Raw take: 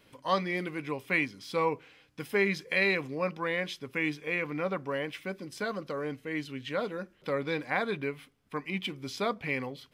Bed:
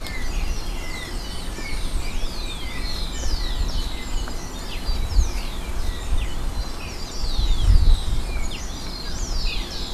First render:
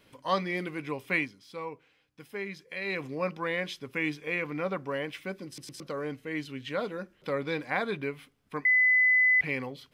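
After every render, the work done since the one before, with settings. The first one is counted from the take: 1.16–3.06 dip -10 dB, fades 0.23 s; 5.47 stutter in place 0.11 s, 3 plays; 8.65–9.41 bleep 2010 Hz -19 dBFS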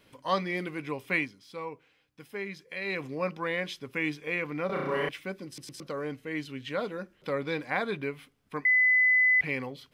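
4.66–5.09 flutter echo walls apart 5.8 m, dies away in 1.2 s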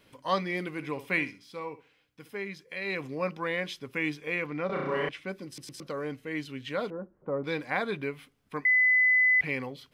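0.7–2.33 flutter echo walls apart 11 m, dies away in 0.29 s; 4.46–5.28 air absorption 57 m; 6.9–7.44 LPF 1100 Hz 24 dB/oct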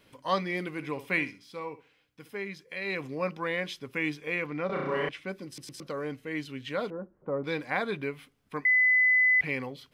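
nothing audible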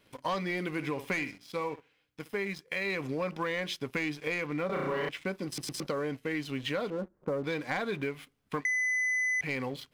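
sample leveller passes 2; compressor, threshold -30 dBFS, peak gain reduction 11.5 dB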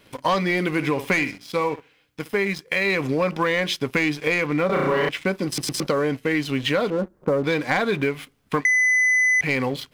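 gain +11 dB

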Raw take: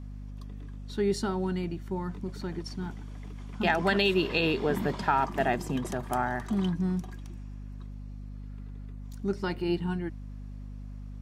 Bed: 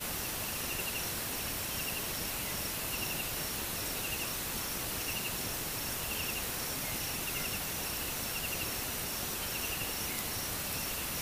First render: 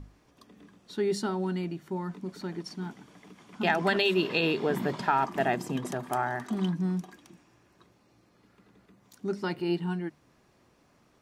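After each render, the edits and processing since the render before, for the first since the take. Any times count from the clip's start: notches 50/100/150/200/250 Hz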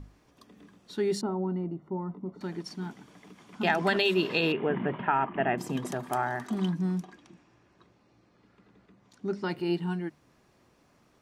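1.21–2.41 polynomial smoothing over 65 samples; 4.52–5.58 Chebyshev low-pass 3000 Hz, order 5; 7.03–9.49 air absorption 76 m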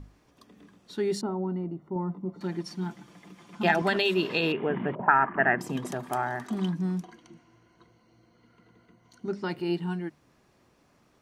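1.95–3.82 comb 5.8 ms, depth 64%; 4.95–5.61 envelope low-pass 470–1700 Hz up, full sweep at -26 dBFS; 7.04–9.28 ripple EQ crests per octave 1.9, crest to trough 12 dB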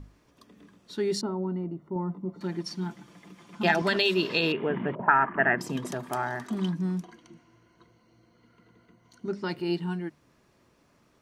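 notch 770 Hz, Q 12; dynamic EQ 4900 Hz, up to +6 dB, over -49 dBFS, Q 1.4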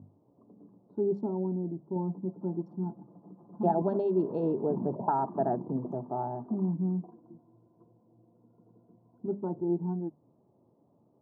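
Wiener smoothing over 15 samples; elliptic band-pass 100–850 Hz, stop band 40 dB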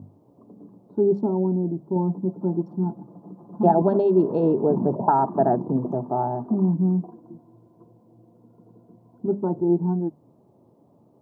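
gain +9 dB

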